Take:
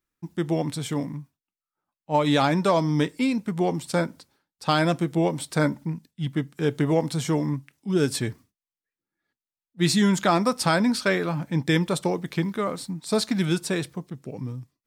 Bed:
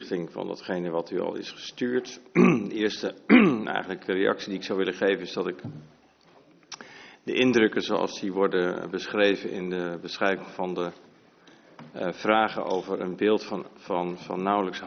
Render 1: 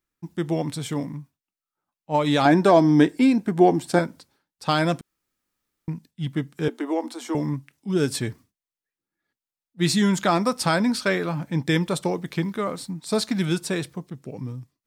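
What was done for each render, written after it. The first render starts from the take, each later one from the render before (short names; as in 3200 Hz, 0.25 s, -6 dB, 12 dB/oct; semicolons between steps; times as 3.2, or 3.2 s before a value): 2.45–3.99 small resonant body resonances 330/700/1600 Hz, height 10 dB, ringing for 20 ms; 5.01–5.88 room tone; 6.68–7.35 rippled Chebyshev high-pass 230 Hz, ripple 6 dB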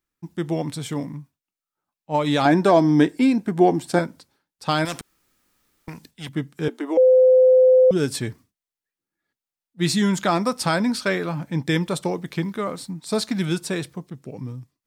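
4.85–6.29 spectral compressor 2:1; 6.97–7.91 bleep 513 Hz -10 dBFS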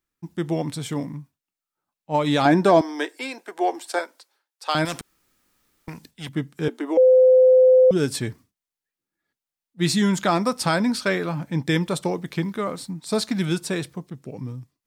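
2.81–4.75 Bessel high-pass 620 Hz, order 6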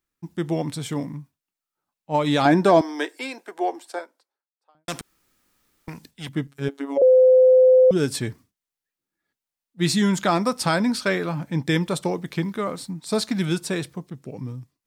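3.15–4.88 studio fade out; 6.47–7.02 robotiser 139 Hz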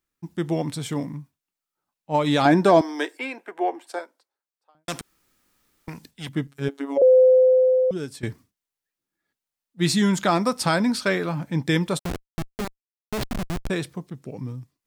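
3.17–3.87 resonant high shelf 3400 Hz -8.5 dB, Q 1.5; 7.19–8.23 fade out, to -15 dB; 11.99–13.7 Schmitt trigger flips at -21.5 dBFS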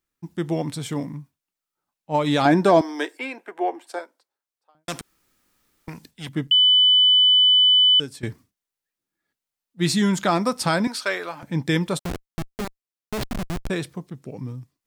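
6.51–8 bleep 3000 Hz -12 dBFS; 10.87–11.43 HPF 550 Hz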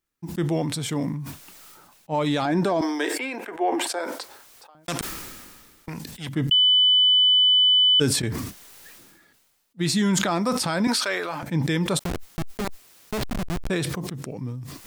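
limiter -14 dBFS, peak gain reduction 10 dB; sustainer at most 33 dB/s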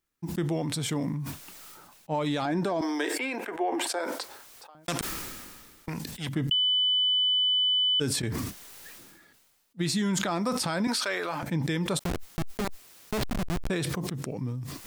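compressor 2.5:1, threshold -27 dBFS, peak gain reduction 8 dB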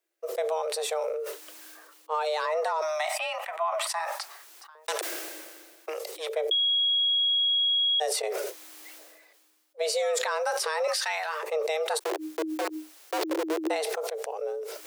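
frequency shift +310 Hz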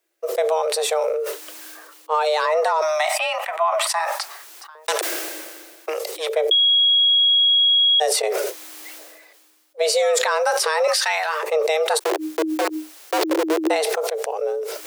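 gain +8.5 dB; limiter -2 dBFS, peak gain reduction 1 dB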